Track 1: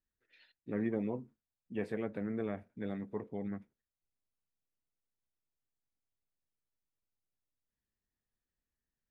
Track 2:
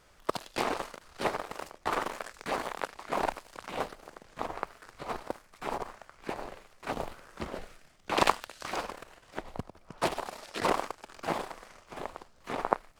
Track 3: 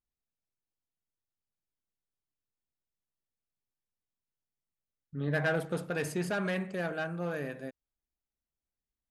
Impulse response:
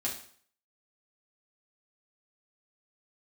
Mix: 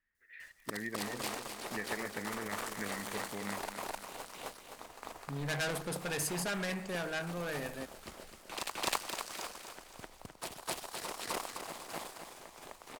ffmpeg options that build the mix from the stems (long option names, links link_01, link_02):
-filter_complex "[0:a]lowpass=frequency=1900:width_type=q:width=5.8,volume=-0.5dB,asplit=3[link_01][link_02][link_03];[link_02]volume=-15dB[link_04];[1:a]adelay=400,volume=-8dB,asplit=2[link_05][link_06];[link_06]volume=-5dB[link_07];[2:a]highshelf=frequency=7700:gain=-7,asoftclip=type=tanh:threshold=-33dB,adelay=150,volume=-1dB[link_08];[link_03]apad=whole_len=590501[link_09];[link_05][link_09]sidechaingate=range=-9dB:threshold=-58dB:ratio=16:detection=peak[link_10];[link_01][link_10]amix=inputs=2:normalize=0,acompressor=threshold=-38dB:ratio=6,volume=0dB[link_11];[link_04][link_07]amix=inputs=2:normalize=0,aecho=0:1:257|514|771|1028|1285|1542:1|0.41|0.168|0.0689|0.0283|0.0116[link_12];[link_08][link_11][link_12]amix=inputs=3:normalize=0,crystalizer=i=4.5:c=0"